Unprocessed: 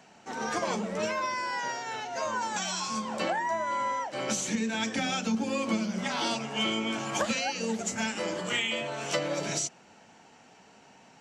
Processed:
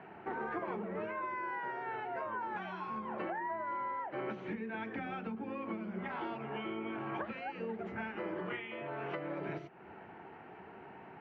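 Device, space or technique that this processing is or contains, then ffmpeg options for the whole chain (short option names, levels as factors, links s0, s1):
bass amplifier: -af "lowpass=5700,acompressor=threshold=0.00708:ratio=4,highpass=64,equalizer=f=75:t=q:w=4:g=8,equalizer=f=240:t=q:w=4:g=-6,equalizer=f=370:t=q:w=4:g=9,equalizer=f=550:t=q:w=4:g=-5,lowpass=f=2100:w=0.5412,lowpass=f=2100:w=1.3066,volume=1.78"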